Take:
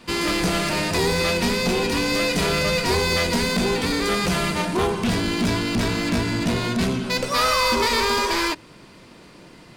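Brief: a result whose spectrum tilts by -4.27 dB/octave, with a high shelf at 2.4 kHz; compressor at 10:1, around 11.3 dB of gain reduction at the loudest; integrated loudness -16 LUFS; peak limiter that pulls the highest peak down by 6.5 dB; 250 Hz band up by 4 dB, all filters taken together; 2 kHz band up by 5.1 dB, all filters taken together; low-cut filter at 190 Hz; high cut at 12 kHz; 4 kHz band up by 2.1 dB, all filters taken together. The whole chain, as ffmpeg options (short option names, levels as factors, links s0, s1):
-af "highpass=190,lowpass=12000,equalizer=f=250:t=o:g=7,equalizer=f=2000:t=o:g=8,highshelf=f=2400:g=-8,equalizer=f=4000:t=o:g=7.5,acompressor=threshold=0.0501:ratio=10,volume=5.31,alimiter=limit=0.398:level=0:latency=1"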